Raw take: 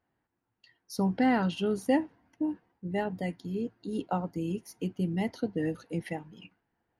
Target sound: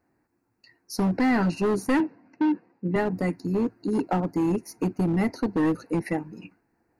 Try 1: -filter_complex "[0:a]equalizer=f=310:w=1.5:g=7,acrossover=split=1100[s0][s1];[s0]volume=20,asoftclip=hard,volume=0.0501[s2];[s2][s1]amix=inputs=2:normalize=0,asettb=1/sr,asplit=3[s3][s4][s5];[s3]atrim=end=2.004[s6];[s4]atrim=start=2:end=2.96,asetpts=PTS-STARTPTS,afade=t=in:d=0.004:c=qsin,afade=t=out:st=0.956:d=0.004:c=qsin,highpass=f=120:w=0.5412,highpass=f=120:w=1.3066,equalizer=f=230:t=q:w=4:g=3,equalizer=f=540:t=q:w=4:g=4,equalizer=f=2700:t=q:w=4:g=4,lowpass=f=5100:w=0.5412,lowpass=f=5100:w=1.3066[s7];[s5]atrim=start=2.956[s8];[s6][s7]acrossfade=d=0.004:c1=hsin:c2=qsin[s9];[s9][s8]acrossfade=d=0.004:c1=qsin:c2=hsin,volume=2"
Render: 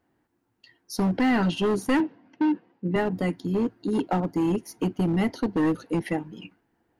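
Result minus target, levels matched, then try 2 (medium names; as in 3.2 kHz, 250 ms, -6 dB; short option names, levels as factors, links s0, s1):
4 kHz band +5.0 dB
-filter_complex "[0:a]asuperstop=centerf=3300:order=8:qfactor=2.6,equalizer=f=310:w=1.5:g=7,acrossover=split=1100[s0][s1];[s0]volume=20,asoftclip=hard,volume=0.0501[s2];[s2][s1]amix=inputs=2:normalize=0,asettb=1/sr,asplit=3[s3][s4][s5];[s3]atrim=end=2.004[s6];[s4]atrim=start=2:end=2.96,asetpts=PTS-STARTPTS,afade=t=in:d=0.004:c=qsin,afade=t=out:st=0.956:d=0.004:c=qsin,highpass=f=120:w=0.5412,highpass=f=120:w=1.3066,equalizer=f=230:t=q:w=4:g=3,equalizer=f=540:t=q:w=4:g=4,equalizer=f=2700:t=q:w=4:g=4,lowpass=f=5100:w=0.5412,lowpass=f=5100:w=1.3066[s7];[s5]atrim=start=2.956[s8];[s6][s7]acrossfade=d=0.004:c1=hsin:c2=qsin[s9];[s9][s8]acrossfade=d=0.004:c1=qsin:c2=hsin,volume=2"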